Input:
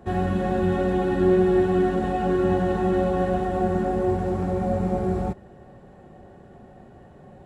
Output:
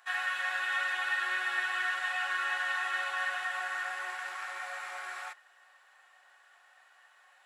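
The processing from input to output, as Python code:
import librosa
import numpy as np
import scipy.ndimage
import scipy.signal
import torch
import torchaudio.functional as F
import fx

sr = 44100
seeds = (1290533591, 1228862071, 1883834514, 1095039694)

y = scipy.signal.sosfilt(scipy.signal.butter(4, 1300.0, 'highpass', fs=sr, output='sos'), x)
y = fx.dynamic_eq(y, sr, hz=1900.0, q=0.87, threshold_db=-54.0, ratio=4.0, max_db=6)
y = F.gain(torch.from_numpy(y), 3.5).numpy()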